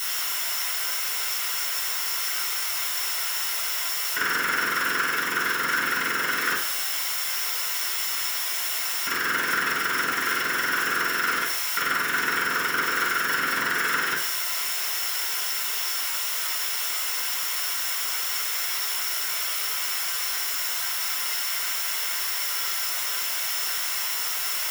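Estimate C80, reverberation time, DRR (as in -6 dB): 8.5 dB, 0.65 s, -8.0 dB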